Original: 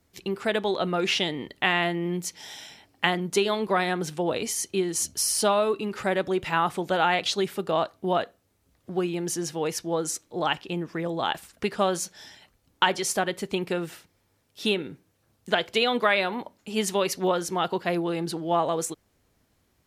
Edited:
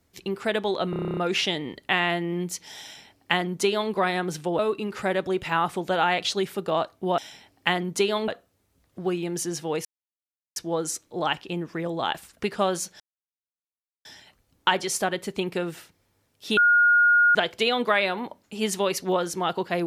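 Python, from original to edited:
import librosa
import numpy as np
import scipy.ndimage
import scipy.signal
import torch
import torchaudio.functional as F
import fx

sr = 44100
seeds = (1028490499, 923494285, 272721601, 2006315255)

y = fx.edit(x, sr, fx.stutter(start_s=0.9, slice_s=0.03, count=10),
    fx.duplicate(start_s=2.55, length_s=1.1, to_s=8.19),
    fx.cut(start_s=4.32, length_s=1.28),
    fx.insert_silence(at_s=9.76, length_s=0.71),
    fx.insert_silence(at_s=12.2, length_s=1.05),
    fx.bleep(start_s=14.72, length_s=0.78, hz=1430.0, db=-14.5), tone=tone)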